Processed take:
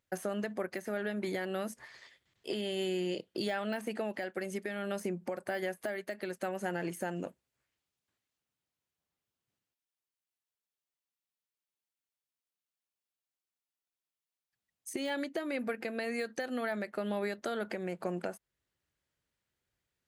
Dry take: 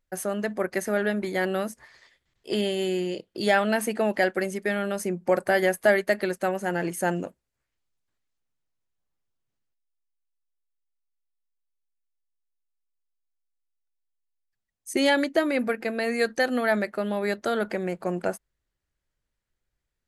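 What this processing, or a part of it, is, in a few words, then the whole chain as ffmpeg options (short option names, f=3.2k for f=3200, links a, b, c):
broadcast voice chain: -af "highpass=86,deesser=0.75,acompressor=threshold=-29dB:ratio=5,equalizer=f=3k:t=o:w=0.77:g=2.5,alimiter=limit=-24dB:level=0:latency=1:release=445"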